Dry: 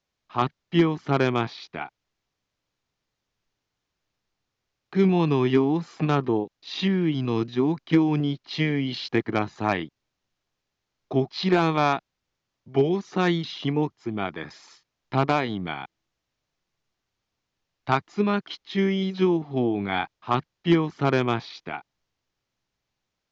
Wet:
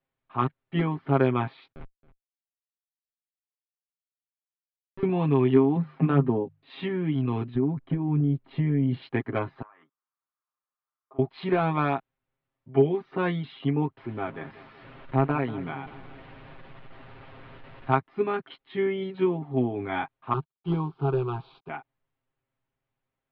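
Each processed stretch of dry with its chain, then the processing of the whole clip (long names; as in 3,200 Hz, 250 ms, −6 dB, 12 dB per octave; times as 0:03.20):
0:01.72–0:05.03: high-pass filter 240 Hz 24 dB per octave + comparator with hysteresis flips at −23.5 dBFS + single-tap delay 272 ms −17.5 dB
0:05.76–0:06.70: low-pass filter 3,200 Hz 6 dB per octave + parametric band 190 Hz +9 dB 0.85 octaves + mains-hum notches 50/100/150 Hz
0:07.55–0:09.02: spectral tilt −3.5 dB per octave + downward compressor 8 to 1, threshold −20 dBFS
0:09.62–0:11.19: resonant band-pass 1,200 Hz, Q 4.7 + downward compressor 16 to 1, threshold −44 dBFS
0:13.97–0:17.91: linear delta modulator 64 kbit/s, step −36 dBFS + high-frequency loss of the air 150 metres + repeating echo 188 ms, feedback 57%, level −16 dB
0:20.33–0:21.69: variable-slope delta modulation 32 kbit/s + phaser with its sweep stopped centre 380 Hz, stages 8
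whole clip: Bessel low-pass filter 2,000 Hz, order 8; comb filter 7.5 ms, depth 74%; level −3.5 dB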